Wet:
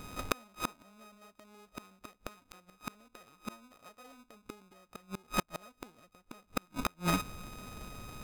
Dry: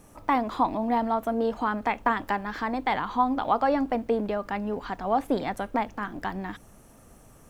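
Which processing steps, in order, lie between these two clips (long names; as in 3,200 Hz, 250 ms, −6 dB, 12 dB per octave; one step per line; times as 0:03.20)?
samples sorted by size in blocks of 32 samples
gate with flip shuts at −22 dBFS, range −38 dB
change of speed 0.91×
level +6.5 dB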